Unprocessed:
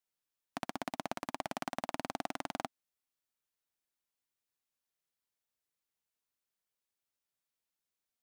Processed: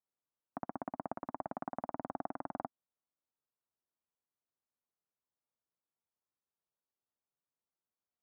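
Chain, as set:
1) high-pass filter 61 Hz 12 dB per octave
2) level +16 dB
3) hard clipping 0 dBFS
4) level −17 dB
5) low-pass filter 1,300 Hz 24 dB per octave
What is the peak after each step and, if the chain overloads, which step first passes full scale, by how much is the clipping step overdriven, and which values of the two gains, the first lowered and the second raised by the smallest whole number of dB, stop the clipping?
−17.5, −1.5, −1.5, −18.5, −22.5 dBFS
no step passes full scale

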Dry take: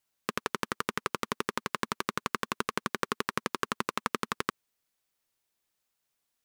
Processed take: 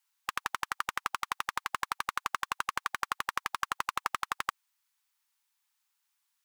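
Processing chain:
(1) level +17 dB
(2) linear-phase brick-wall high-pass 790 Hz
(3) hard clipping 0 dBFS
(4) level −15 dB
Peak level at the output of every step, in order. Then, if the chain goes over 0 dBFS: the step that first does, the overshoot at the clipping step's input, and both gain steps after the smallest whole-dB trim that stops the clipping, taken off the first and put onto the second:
+9.5, +7.5, 0.0, −15.0 dBFS
step 1, 7.5 dB
step 1 +9 dB, step 4 −7 dB

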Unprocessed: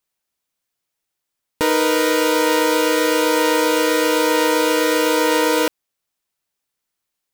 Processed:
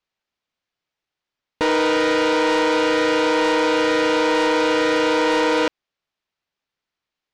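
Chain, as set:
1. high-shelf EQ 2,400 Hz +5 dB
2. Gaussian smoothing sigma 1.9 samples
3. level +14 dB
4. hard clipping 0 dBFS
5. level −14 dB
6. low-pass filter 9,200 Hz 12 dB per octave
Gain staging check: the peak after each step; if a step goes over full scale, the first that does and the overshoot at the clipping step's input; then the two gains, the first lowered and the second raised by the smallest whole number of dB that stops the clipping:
−1.5, −5.5, +8.5, 0.0, −14.0, −13.0 dBFS
step 3, 8.5 dB
step 3 +5 dB, step 5 −5 dB

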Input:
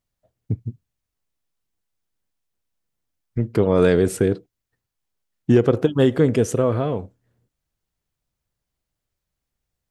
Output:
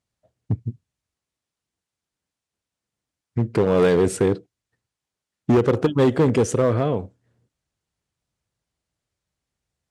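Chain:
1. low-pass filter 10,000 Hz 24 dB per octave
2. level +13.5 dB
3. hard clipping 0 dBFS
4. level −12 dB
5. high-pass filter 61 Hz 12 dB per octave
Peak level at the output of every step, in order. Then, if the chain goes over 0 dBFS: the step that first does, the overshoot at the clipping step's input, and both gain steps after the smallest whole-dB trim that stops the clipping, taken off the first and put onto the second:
−4.0, +9.5, 0.0, −12.0, −7.5 dBFS
step 2, 9.5 dB
step 2 +3.5 dB, step 4 −2 dB

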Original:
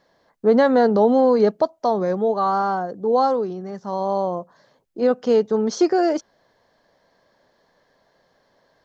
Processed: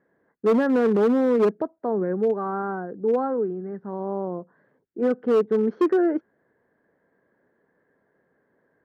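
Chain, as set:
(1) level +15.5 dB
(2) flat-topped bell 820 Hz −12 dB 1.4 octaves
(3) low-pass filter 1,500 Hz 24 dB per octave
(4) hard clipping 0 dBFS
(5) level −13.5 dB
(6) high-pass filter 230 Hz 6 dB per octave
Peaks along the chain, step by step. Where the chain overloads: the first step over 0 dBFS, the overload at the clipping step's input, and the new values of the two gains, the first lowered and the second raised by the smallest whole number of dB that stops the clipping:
+9.5, +8.0, +8.0, 0.0, −13.5, −10.5 dBFS
step 1, 8.0 dB
step 1 +7.5 dB, step 5 −5.5 dB

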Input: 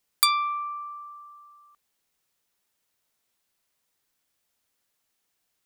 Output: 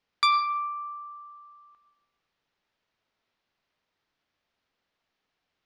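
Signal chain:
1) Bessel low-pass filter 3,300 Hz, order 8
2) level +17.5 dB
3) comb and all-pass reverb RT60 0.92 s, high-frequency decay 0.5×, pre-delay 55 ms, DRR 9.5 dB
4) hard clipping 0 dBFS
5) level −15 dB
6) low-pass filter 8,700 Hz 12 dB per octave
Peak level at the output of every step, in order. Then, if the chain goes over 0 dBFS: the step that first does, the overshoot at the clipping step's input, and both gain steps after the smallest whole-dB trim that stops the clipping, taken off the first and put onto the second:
−14.5, +3.0, +3.0, 0.0, −15.0, −14.5 dBFS
step 2, 3.0 dB
step 2 +14.5 dB, step 5 −12 dB

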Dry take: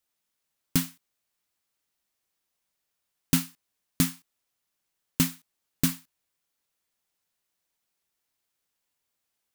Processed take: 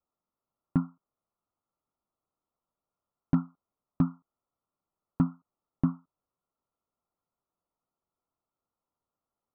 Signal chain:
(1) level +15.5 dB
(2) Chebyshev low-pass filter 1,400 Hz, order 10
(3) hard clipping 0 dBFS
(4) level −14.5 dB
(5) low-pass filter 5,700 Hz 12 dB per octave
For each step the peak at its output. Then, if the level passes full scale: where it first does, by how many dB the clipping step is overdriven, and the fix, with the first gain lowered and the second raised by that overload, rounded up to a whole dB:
+8.0, +4.0, 0.0, −14.5, −14.5 dBFS
step 1, 4.0 dB
step 1 +11.5 dB, step 4 −10.5 dB

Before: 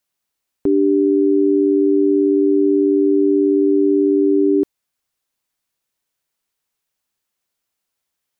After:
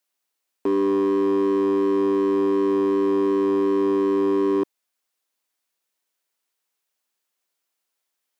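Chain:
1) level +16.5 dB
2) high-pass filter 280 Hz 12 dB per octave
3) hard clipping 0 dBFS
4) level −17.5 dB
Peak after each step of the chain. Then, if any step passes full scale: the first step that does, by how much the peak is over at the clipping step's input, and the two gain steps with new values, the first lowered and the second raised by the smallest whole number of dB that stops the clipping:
+8.5, +6.5, 0.0, −17.5 dBFS
step 1, 6.5 dB
step 1 +9.5 dB, step 4 −10.5 dB

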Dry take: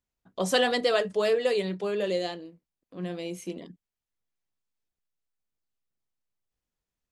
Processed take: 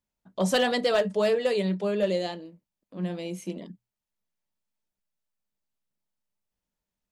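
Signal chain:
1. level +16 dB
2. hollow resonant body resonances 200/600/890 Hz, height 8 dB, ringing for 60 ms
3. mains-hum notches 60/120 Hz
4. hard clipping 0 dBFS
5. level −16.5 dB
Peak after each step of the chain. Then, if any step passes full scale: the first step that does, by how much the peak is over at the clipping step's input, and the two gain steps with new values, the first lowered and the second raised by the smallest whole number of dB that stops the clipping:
+4.0, +4.5, +4.5, 0.0, −16.5 dBFS
step 1, 4.5 dB
step 1 +11 dB, step 5 −11.5 dB

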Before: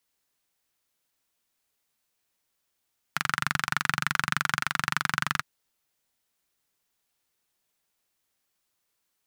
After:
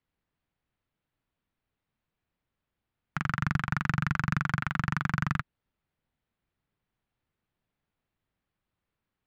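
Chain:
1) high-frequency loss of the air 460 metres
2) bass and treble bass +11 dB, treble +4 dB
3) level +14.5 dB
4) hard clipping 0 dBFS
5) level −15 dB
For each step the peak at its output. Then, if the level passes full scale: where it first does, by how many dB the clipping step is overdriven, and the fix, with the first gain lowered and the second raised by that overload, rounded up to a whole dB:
−11.5, −10.0, +4.5, 0.0, −15.0 dBFS
step 3, 4.5 dB
step 3 +9.5 dB, step 5 −10 dB

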